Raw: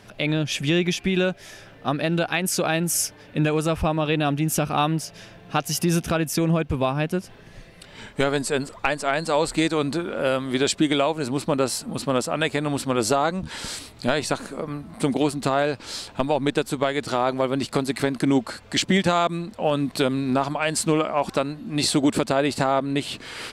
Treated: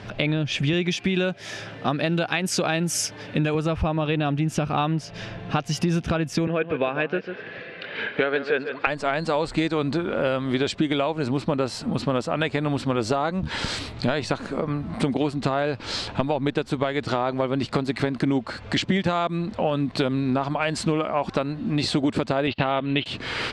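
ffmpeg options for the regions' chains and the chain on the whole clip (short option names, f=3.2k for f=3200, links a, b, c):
-filter_complex "[0:a]asettb=1/sr,asplit=3[a][b][c];[a]atrim=end=0.734[d];[b]atrim=start=0.73:end=3.55,asetpts=PTS-STARTPTS,afade=t=in:d=0.004:c=qsin,afade=t=out:st=2.816:d=0.004:c=qsin,highpass=110,aemphasis=mode=production:type=cd[e];[c]atrim=start=3.546[f];[d][e]acrossfade=d=0.004:c1=hsin:c2=qsin[g];[g][f]acrossfade=d=0.004:c1=qsin:c2=hsin,asettb=1/sr,asplit=3[h][i][j];[h]atrim=end=6.474[k];[i]atrim=start=6.47:end=8.87,asetpts=PTS-STARTPTS,afade=t=in:d=0.004:c=qsin,afade=t=out:st=2.396:d=0.004:c=qsin,highpass=290,equalizer=f=470:t=q:w=4:g=7,equalizer=f=930:t=q:w=4:g=-5,equalizer=f=1.6k:t=q:w=4:g=9,equalizer=f=2.5k:t=q:w=4:g=6,lowpass=f=4.1k:w=0.5412,lowpass=f=4.1k:w=1.3066,aecho=1:1:145:0.237,atrim=end_sample=105840[l];[j]atrim=start=8.866[m];[k][l]acrossfade=d=0.004:c1=hsin:c2=qsin[n];[n][m]acrossfade=d=0.004:c1=qsin:c2=hsin,asettb=1/sr,asplit=3[o][p][q];[o]atrim=end=22.474[r];[p]atrim=start=22.47:end=23.06,asetpts=PTS-STARTPTS,afade=t=in:d=0.004:c=qsin,afade=t=out:st=0.586:d=0.004:c=qsin,lowpass=f=3.8k:w=0.5412,lowpass=f=3.8k:w=1.3066,agate=range=-25dB:threshold=-31dB:ratio=16:release=100:detection=peak,equalizer=f=3k:w=1.6:g=13.5[s];[q]atrim=start=23.056[t];[r][s]acrossfade=d=0.004:c1=hsin:c2=qsin[u];[u][t]acrossfade=d=0.004:c1=qsin:c2=hsin,lowpass=4.2k,equalizer=f=98:t=o:w=1.2:g=5,acompressor=threshold=-32dB:ratio=3,volume=8.5dB"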